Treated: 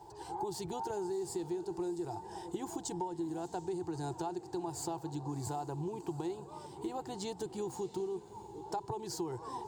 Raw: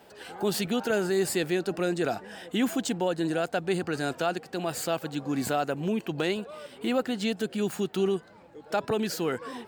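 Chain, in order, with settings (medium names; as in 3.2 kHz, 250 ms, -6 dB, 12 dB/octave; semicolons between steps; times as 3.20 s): FFT filter 130 Hz 0 dB, 240 Hz -25 dB, 340 Hz -1 dB, 580 Hz -23 dB, 900 Hz +4 dB, 1.3 kHz -22 dB, 2.7 kHz -25 dB, 4.7 kHz -12 dB, 7.4 kHz -8 dB, 12 kHz -18 dB; compression, threshold -43 dBFS, peak gain reduction 14.5 dB; on a send: echo that smears into a reverb 681 ms, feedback 40%, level -15 dB; on the sum: trim +7.5 dB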